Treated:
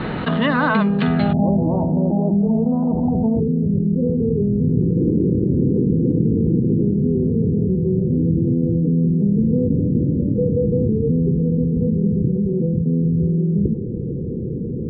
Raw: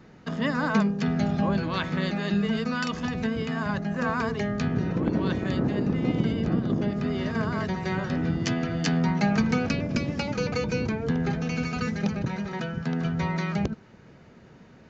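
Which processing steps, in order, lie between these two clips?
Chebyshev low-pass with heavy ripple 4,200 Hz, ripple 3 dB, from 0:01.32 910 Hz, from 0:03.39 500 Hz
envelope flattener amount 70%
level +6 dB

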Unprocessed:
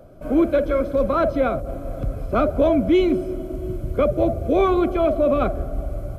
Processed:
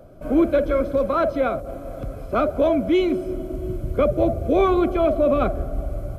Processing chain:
0:00.98–0:03.26: low-shelf EQ 220 Hz −7 dB

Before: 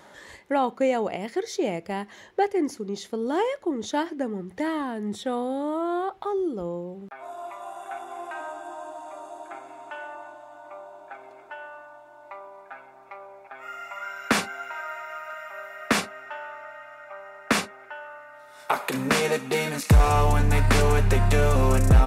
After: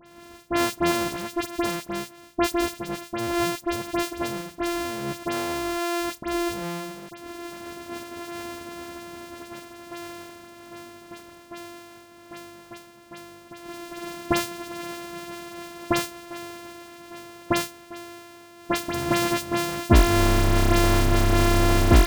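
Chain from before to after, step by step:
samples sorted by size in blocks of 128 samples
all-pass dispersion highs, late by 63 ms, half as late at 2,700 Hz

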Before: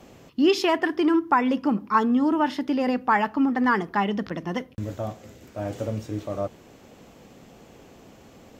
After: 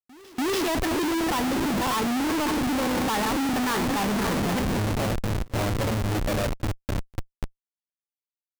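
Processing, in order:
feedback delay that plays each chunk backwards 267 ms, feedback 70%, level −10 dB
comparator with hysteresis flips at −32.5 dBFS
backwards echo 289 ms −23 dB

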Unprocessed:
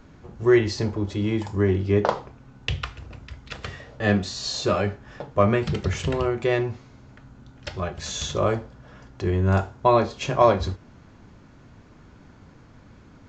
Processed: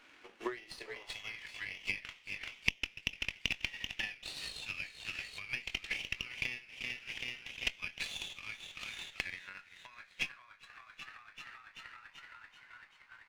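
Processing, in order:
bass and treble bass −6 dB, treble −3 dB
band-pass filter sweep 2,600 Hz → 880 Hz, 0:08.48–0:12.00
high-shelf EQ 4,700 Hz +9.5 dB
double-tracking delay 21 ms −7 dB
echo with shifted repeats 386 ms, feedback 64%, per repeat +63 Hz, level −13.5 dB
downward compressor 16 to 1, threshold −49 dBFS, peak gain reduction 29 dB
high-pass filter sweep 280 Hz → 2,300 Hz, 0:00.72–0:01.56
transient designer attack +9 dB, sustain −3 dB
windowed peak hold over 3 samples
level +4.5 dB

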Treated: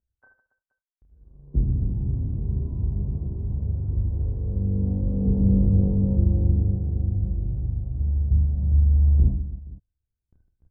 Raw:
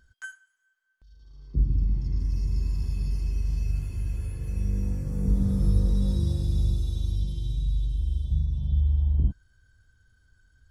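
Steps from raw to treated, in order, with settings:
leveller curve on the samples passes 1
inverse Chebyshev low-pass filter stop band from 3,400 Hz, stop band 70 dB
noise gate with hold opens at −52 dBFS
reverse bouncing-ball delay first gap 30 ms, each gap 1.6×, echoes 5
level +1 dB

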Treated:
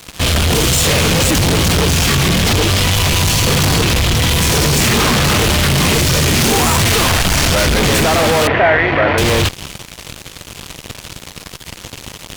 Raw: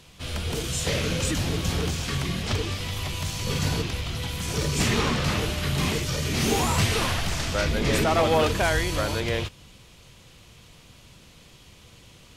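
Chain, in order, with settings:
fuzz pedal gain 42 dB, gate −47 dBFS
0:08.47–0:09.18: loudspeaker in its box 110–2,600 Hz, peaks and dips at 190 Hz −8 dB, 680 Hz +7 dB, 1,900 Hz +8 dB
level +1.5 dB

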